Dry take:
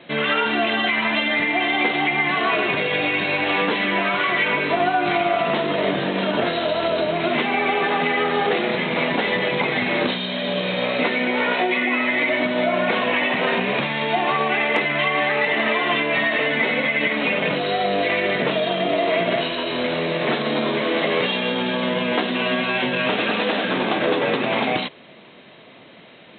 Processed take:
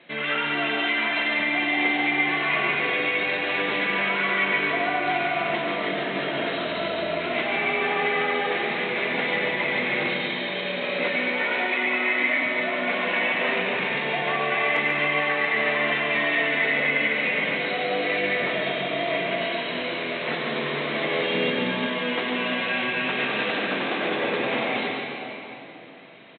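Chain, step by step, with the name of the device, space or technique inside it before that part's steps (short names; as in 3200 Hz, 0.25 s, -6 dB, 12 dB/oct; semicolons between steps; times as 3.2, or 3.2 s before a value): PA in a hall (HPF 150 Hz 6 dB/oct; bell 2100 Hz +5.5 dB 0.89 oct; echo 0.143 s -6 dB; reverb RT60 3.5 s, pre-delay 86 ms, DRR 1.5 dB); 21.34–21.87 low shelf 260 Hz +9.5 dB; gain -9 dB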